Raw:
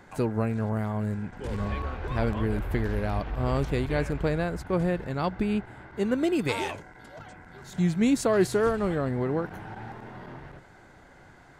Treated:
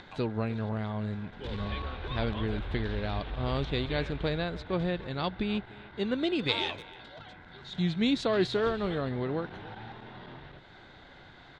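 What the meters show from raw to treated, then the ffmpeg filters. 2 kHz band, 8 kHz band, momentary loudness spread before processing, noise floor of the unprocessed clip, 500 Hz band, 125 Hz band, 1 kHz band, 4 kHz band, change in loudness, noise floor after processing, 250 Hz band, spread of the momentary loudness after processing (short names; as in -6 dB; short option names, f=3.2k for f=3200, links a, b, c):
-1.5 dB, under -10 dB, 19 LU, -53 dBFS, -4.5 dB, -4.5 dB, -4.0 dB, +7.0 dB, -4.0 dB, -52 dBFS, -4.5 dB, 19 LU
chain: -filter_complex "[0:a]acompressor=mode=upward:threshold=-42dB:ratio=2.5,lowpass=f=3.7k:t=q:w=5.7,asplit=2[a][b];[b]adelay=300,highpass=300,lowpass=3.4k,asoftclip=type=hard:threshold=-17dB,volume=-17dB[c];[a][c]amix=inputs=2:normalize=0,volume=-4.5dB"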